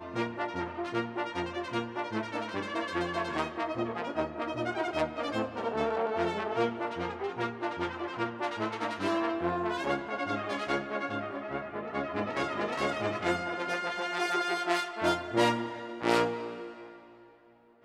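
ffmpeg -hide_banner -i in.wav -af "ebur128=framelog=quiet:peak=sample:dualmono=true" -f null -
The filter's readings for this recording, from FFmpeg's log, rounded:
Integrated loudness:
  I:         -29.2 LUFS
  Threshold: -39.5 LUFS
Loudness range:
  LRA:         3.6 LU
  Threshold: -49.2 LUFS
  LRA low:   -30.7 LUFS
  LRA high:  -27.1 LUFS
Sample peak:
  Peak:      -10.4 dBFS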